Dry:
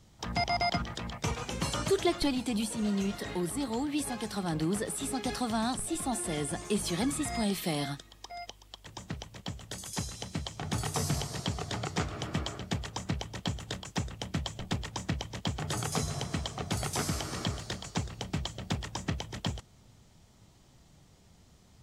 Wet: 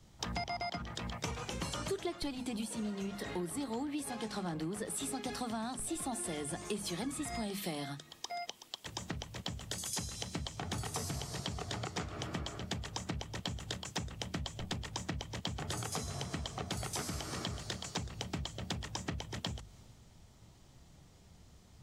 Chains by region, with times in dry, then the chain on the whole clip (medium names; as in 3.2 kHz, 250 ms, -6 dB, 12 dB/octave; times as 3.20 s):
4.11–4.54 s: CVSD coder 64 kbps + Bessel low-pass 7.4 kHz + doubling 23 ms -12 dB
whole clip: hum notches 50/100/150/200/250 Hz; compression 6:1, threshold -43 dBFS; three bands expanded up and down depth 40%; trim +6.5 dB